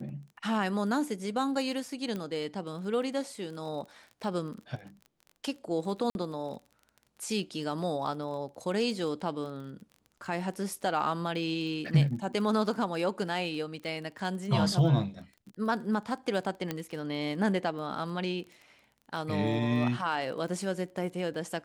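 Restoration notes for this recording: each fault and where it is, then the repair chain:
crackle 22 per s -40 dBFS
2.16 s: pop -23 dBFS
6.10–6.15 s: dropout 51 ms
16.71 s: pop -17 dBFS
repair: de-click; interpolate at 6.10 s, 51 ms

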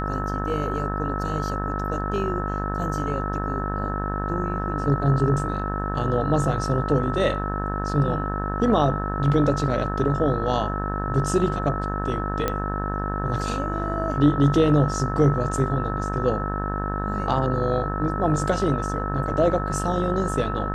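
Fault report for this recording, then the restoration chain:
buzz 50 Hz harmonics 36 -28 dBFS
whine 1.3 kHz -30 dBFS
12.48 s: pop -9 dBFS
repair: de-click; band-stop 1.3 kHz, Q 30; de-hum 50 Hz, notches 36

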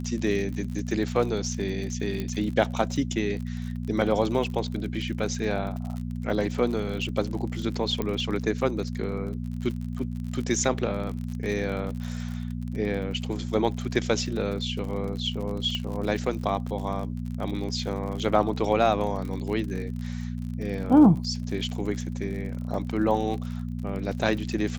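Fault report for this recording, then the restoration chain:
crackle 49 per s -33 dBFS
hum 60 Hz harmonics 4 -32 dBFS
2.20 s: pop -18 dBFS
8.02 s: pop -15 dBFS
15.75 s: pop -17 dBFS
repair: de-click; de-hum 60 Hz, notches 4

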